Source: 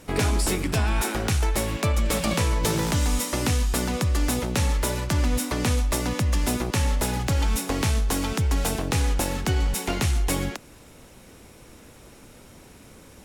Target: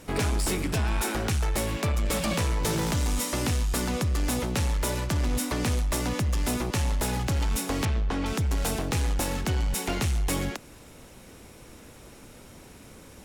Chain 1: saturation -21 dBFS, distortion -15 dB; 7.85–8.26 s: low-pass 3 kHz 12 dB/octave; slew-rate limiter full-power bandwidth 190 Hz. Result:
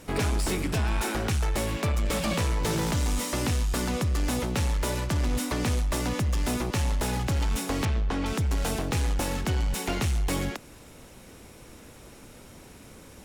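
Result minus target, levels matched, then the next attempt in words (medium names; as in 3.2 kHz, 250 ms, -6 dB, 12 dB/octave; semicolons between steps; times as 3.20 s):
slew-rate limiter: distortion +20 dB
saturation -21 dBFS, distortion -15 dB; 7.85–8.26 s: low-pass 3 kHz 12 dB/octave; slew-rate limiter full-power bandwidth 632.5 Hz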